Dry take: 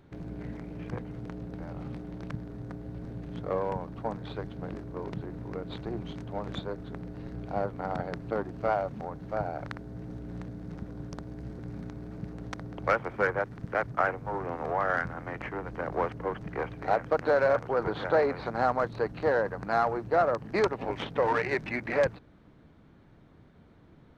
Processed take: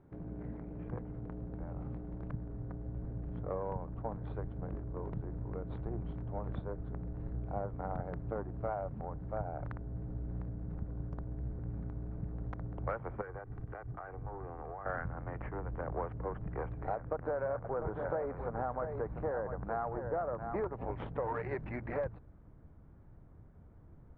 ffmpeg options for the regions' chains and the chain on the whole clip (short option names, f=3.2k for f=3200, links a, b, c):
-filter_complex "[0:a]asettb=1/sr,asplit=3[a][b][c];[a]atrim=end=13.214[d];[b]atrim=start=13.21:end=14.86,asetpts=PTS-STARTPTS,afade=t=in:d=0.004:c=qsin,afade=t=out:st=1.646:d=0.004:c=qsin,aecho=1:1:2.6:0.34,atrim=end_sample=72765,acompressor=threshold=-36dB:ratio=5:attack=3.2:release=140:knee=1:detection=peak[e];[c]atrim=start=14.856[f];[d][e]acrossfade=d=0.004:c1=hsin:c2=qsin[g];[g][f]acrossfade=d=0.004:c1=qsin:c2=hsin,asettb=1/sr,asplit=3[h][i][j];[h]atrim=end=16.954[k];[i]atrim=start=16.95:end=20.74,asetpts=PTS-STARTPTS,afade=t=in:d=0.004:c=qsin,afade=t=out:st=3.786:d=0.004:c=qsin,lowpass=2.2k,aecho=1:1:695:0.316,atrim=end_sample=167139[l];[j]atrim=start=20.736[m];[k][l]acrossfade=d=0.004:c1=hsin:c2=qsin[n];[n][m]acrossfade=d=0.004:c1=qsin:c2=hsin,lowpass=1.2k,asubboost=boost=3.5:cutoff=110,acompressor=threshold=-28dB:ratio=5,volume=-4dB"